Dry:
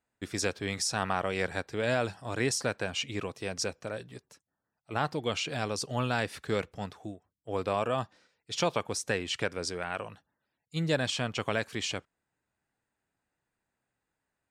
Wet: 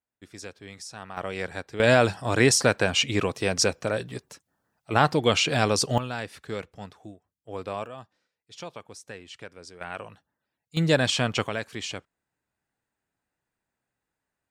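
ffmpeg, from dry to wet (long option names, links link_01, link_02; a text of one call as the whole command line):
ffmpeg -i in.wav -af "asetnsamples=nb_out_samples=441:pad=0,asendcmd='1.17 volume volume -1dB;1.8 volume volume 10dB;5.98 volume volume -3dB;7.86 volume volume -11dB;9.81 volume volume -1dB;10.77 volume volume 7dB;11.47 volume volume -0.5dB',volume=-10dB" out.wav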